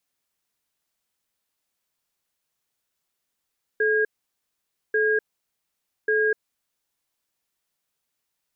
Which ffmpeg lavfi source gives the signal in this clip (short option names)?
-f lavfi -i "aevalsrc='0.0891*(sin(2*PI*432*t)+sin(2*PI*1630*t))*clip(min(mod(t,1.14),0.25-mod(t,1.14))/0.005,0,1)':d=2.7:s=44100"